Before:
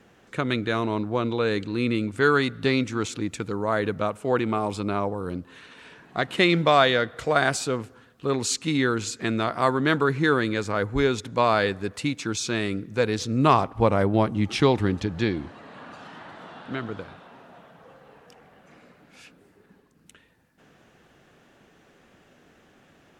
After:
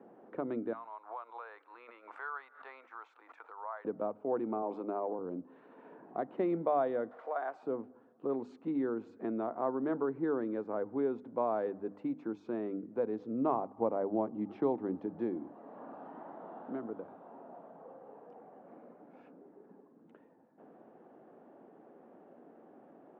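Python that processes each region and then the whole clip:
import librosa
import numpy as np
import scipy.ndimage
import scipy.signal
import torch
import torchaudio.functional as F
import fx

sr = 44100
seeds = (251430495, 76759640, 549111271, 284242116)

y = fx.chain(x, sr, fx.highpass(hz=1000.0, slope=24),
    fx.pre_swell(db_per_s=120.0), at=(0.73, 3.85))
y = fx.chain(y, sr, fx.highpass(hz=270.0, slope=12),
    fx.transient(attack_db=3, sustain_db=7), at=(4.62, 5.19))
y = fx.chain(y, sr, fx.zero_step(step_db=-32.5),
    fx.highpass(hz=860.0, slope=12),
    fx.high_shelf(hz=8200.0, db=-4.0), at=(7.11, 7.63))
y = scipy.signal.sosfilt(scipy.signal.cheby1(2, 1.0, [250.0, 810.0], 'bandpass', fs=sr, output='sos'), y)
y = fx.hum_notches(y, sr, base_hz=50, count=6)
y = fx.band_squash(y, sr, depth_pct=40)
y = y * 10.0 ** (-7.5 / 20.0)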